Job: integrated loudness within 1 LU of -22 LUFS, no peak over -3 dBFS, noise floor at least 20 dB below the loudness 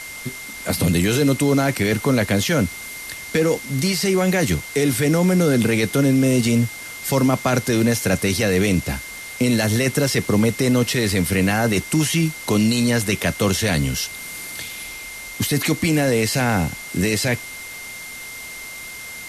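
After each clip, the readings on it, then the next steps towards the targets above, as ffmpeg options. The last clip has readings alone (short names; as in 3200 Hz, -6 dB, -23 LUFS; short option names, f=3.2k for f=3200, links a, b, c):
steady tone 2100 Hz; tone level -34 dBFS; noise floor -35 dBFS; noise floor target -40 dBFS; loudness -19.5 LUFS; peak -6.5 dBFS; loudness target -22.0 LUFS
-> -af "bandreject=f=2.1k:w=30"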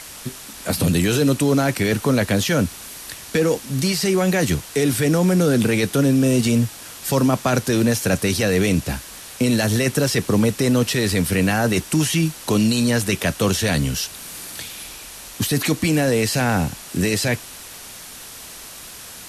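steady tone none; noise floor -38 dBFS; noise floor target -40 dBFS
-> -af "afftdn=nr=6:nf=-38"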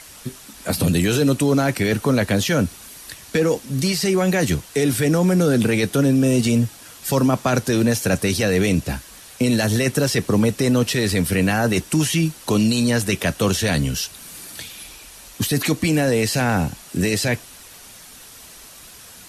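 noise floor -43 dBFS; loudness -19.5 LUFS; peak -6.5 dBFS; loudness target -22.0 LUFS
-> -af "volume=-2.5dB"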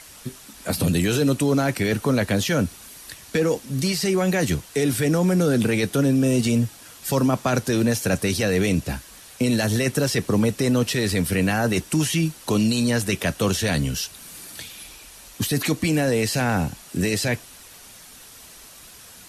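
loudness -22.0 LUFS; peak -9.0 dBFS; noise floor -45 dBFS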